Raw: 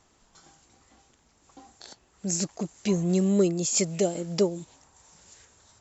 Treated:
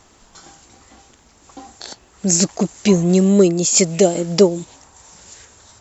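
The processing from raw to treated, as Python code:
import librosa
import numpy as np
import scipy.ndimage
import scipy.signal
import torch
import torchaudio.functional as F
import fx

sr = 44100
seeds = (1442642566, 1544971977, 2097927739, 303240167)

p1 = fx.peak_eq(x, sr, hz=150.0, db=-4.0, octaves=0.33)
p2 = fx.rider(p1, sr, range_db=10, speed_s=0.5)
p3 = p1 + (p2 * 10.0 ** (-0.5 / 20.0))
y = p3 * 10.0 ** (5.5 / 20.0)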